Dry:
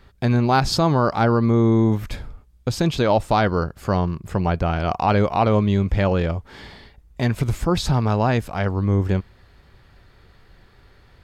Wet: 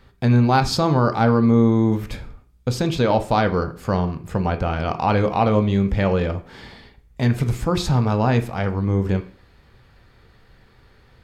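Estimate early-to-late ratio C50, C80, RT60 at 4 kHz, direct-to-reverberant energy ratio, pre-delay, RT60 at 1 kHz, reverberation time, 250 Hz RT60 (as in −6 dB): 14.5 dB, 18.5 dB, 0.40 s, 7.0 dB, 3 ms, 0.45 s, 0.45 s, 0.55 s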